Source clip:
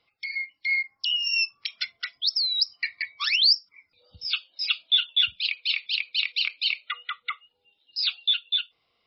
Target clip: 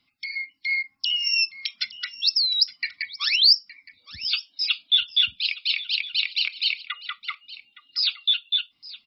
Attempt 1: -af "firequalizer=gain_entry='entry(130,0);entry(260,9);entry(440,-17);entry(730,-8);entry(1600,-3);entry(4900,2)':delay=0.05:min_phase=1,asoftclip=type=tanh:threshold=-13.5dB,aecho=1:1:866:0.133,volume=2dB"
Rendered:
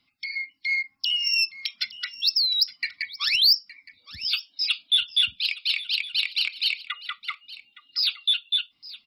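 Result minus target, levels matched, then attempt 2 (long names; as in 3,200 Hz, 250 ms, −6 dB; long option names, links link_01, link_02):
soft clipping: distortion +20 dB
-af "firequalizer=gain_entry='entry(130,0);entry(260,9);entry(440,-17);entry(730,-8);entry(1600,-3);entry(4900,2)':delay=0.05:min_phase=1,asoftclip=type=tanh:threshold=-2dB,aecho=1:1:866:0.133,volume=2dB"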